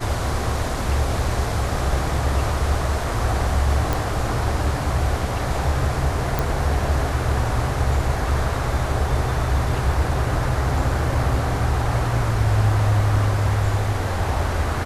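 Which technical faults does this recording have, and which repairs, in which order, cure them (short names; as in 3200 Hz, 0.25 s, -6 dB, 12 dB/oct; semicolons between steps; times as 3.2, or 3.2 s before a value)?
3.93 pop
6.39 pop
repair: de-click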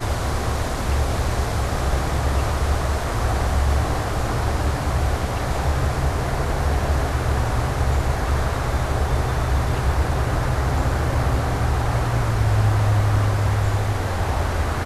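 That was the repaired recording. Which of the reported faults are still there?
none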